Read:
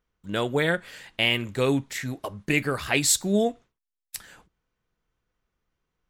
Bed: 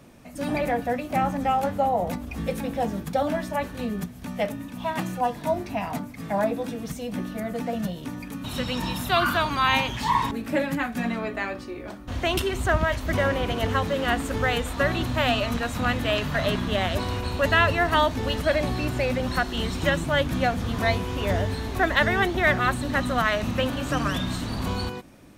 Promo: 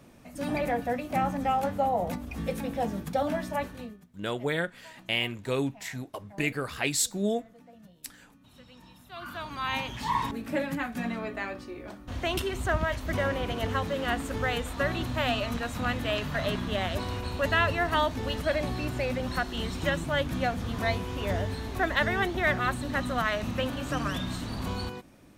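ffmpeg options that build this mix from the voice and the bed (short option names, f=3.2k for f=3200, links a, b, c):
-filter_complex "[0:a]adelay=3900,volume=-5.5dB[a];[1:a]volume=16dB,afade=t=out:st=3.61:d=0.37:silence=0.0891251,afade=t=in:st=9.1:d=1.12:silence=0.105925[b];[a][b]amix=inputs=2:normalize=0"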